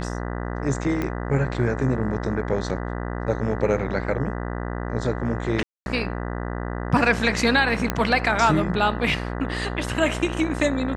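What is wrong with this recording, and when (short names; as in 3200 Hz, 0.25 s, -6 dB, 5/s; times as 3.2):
buzz 60 Hz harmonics 33 -29 dBFS
1.02 pop -14 dBFS
5.63–5.86 gap 0.231 s
7.9 pop -7 dBFS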